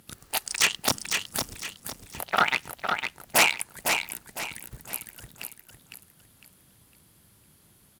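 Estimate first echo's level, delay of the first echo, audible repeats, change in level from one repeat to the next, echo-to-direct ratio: −5.5 dB, 506 ms, 4, −9.0 dB, −5.0 dB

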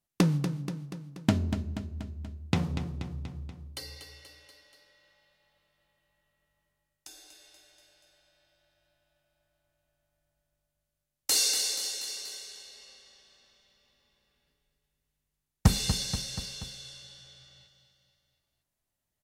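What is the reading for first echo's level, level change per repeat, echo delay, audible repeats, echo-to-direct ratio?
−9.0 dB, −4.5 dB, 240 ms, 4, −7.0 dB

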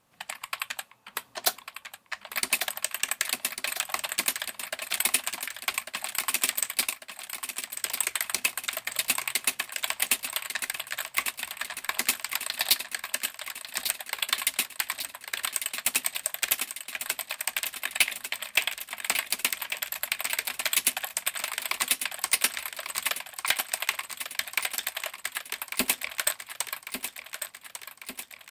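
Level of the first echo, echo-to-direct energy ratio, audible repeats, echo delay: −9.0 dB, −7.0 dB, 6, 1,147 ms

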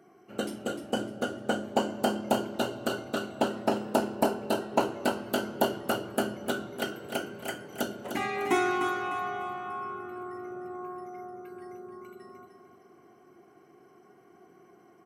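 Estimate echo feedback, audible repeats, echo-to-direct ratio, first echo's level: 35%, 3, −7.5 dB, −8.0 dB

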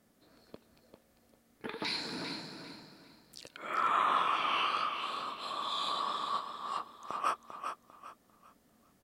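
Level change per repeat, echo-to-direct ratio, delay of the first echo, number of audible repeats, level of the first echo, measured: −11.0 dB, −7.0 dB, 397 ms, 3, −7.5 dB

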